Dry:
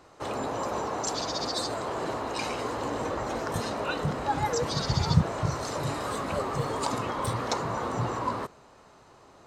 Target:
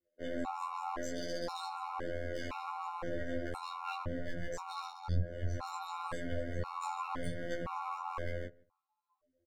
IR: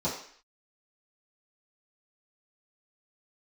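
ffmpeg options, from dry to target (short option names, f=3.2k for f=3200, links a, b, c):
-filter_complex "[0:a]afftdn=nr=34:nf=-41,highshelf=f=6.3k:g=-5,bandreject=f=5.4k:w=12,aecho=1:1:3.7:0.9,asubboost=boost=5:cutoff=120,acrossover=split=620|2100[a][b][c];[c]alimiter=level_in=6.5dB:limit=-24dB:level=0:latency=1:release=200,volume=-6.5dB[d];[a][b][d]amix=inputs=3:normalize=0,acompressor=threshold=-26dB:ratio=4,aeval=exprs='clip(val(0),-1,0.015)':c=same,afftfilt=real='hypot(re,im)*cos(PI*b)':imag='0':win_size=2048:overlap=0.75,flanger=delay=17.5:depth=3.9:speed=0.66,asplit=2[e][f];[f]adelay=155,lowpass=f=1.3k:p=1,volume=-23.5dB,asplit=2[g][h];[h]adelay=155,lowpass=f=1.3k:p=1,volume=0.23[i];[g][i]amix=inputs=2:normalize=0[j];[e][j]amix=inputs=2:normalize=0,afftfilt=real='re*gt(sin(2*PI*0.97*pts/sr)*(1-2*mod(floor(b*sr/1024/730),2)),0)':imag='im*gt(sin(2*PI*0.97*pts/sr)*(1-2*mod(floor(b*sr/1024/730),2)),0)':win_size=1024:overlap=0.75,volume=3.5dB"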